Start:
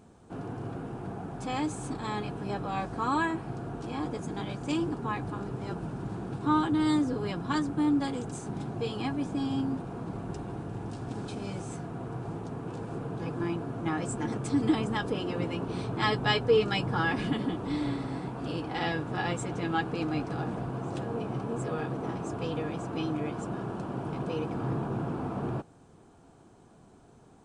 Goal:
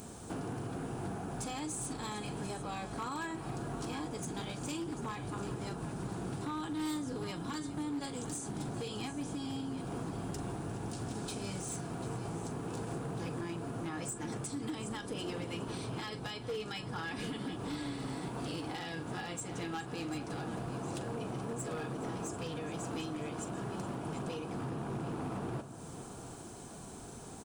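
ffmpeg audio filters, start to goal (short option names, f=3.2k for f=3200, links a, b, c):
-af "aemphasis=mode=production:type=75fm,acompressor=threshold=-46dB:ratio=4,alimiter=level_in=12.5dB:limit=-24dB:level=0:latency=1:release=299,volume=-12.5dB,aecho=1:1:42|418|742:0.224|0.141|0.224,aeval=exprs='0.0106*(abs(mod(val(0)/0.0106+3,4)-2)-1)':c=same,volume=8dB"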